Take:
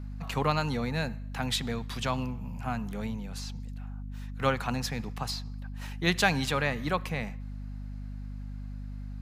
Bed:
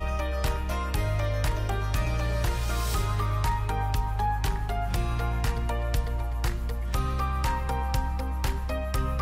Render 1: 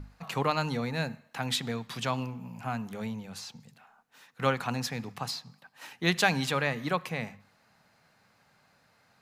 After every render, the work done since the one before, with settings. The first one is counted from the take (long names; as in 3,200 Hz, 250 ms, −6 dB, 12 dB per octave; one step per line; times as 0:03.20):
mains-hum notches 50/100/150/200/250 Hz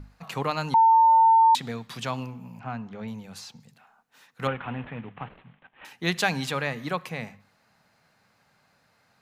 0:00.74–0:01.55: beep over 901 Hz −13.5 dBFS
0:02.59–0:03.08: high-frequency loss of the air 190 metres
0:04.47–0:05.85: variable-slope delta modulation 16 kbit/s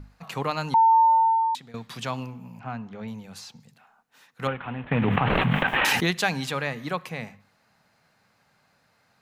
0:01.01–0:01.74: fade out, to −17.5 dB
0:04.91–0:06.11: envelope flattener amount 100%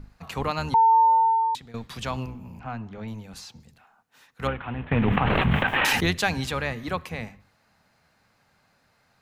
sub-octave generator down 1 octave, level −4 dB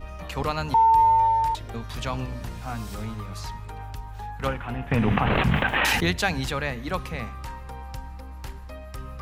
mix in bed −9.5 dB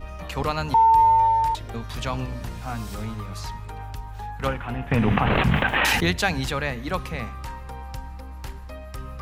level +1.5 dB